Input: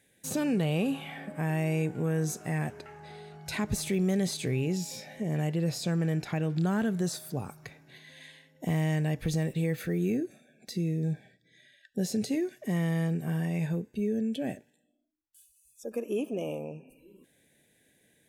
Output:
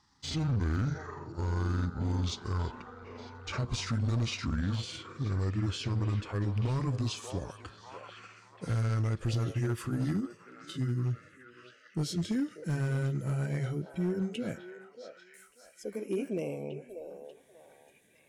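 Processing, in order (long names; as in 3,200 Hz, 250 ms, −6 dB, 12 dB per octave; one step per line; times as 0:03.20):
pitch glide at a constant tempo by −11.5 semitones ending unshifted
echo through a band-pass that steps 589 ms, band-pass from 620 Hz, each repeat 0.7 octaves, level −5 dB
hard clipping −25 dBFS, distortion −17 dB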